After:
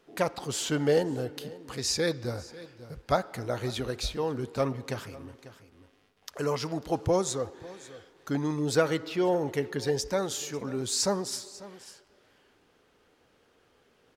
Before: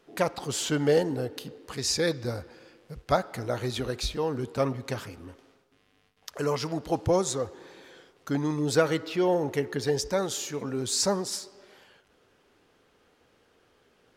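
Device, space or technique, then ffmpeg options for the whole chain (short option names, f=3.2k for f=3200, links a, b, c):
ducked delay: -filter_complex "[0:a]asplit=3[a][b][c];[b]adelay=544,volume=-9dB[d];[c]apad=whole_len=648646[e];[d][e]sidechaincompress=threshold=-37dB:ratio=6:attack=12:release=1010[f];[a][f]amix=inputs=2:normalize=0,volume=-1.5dB"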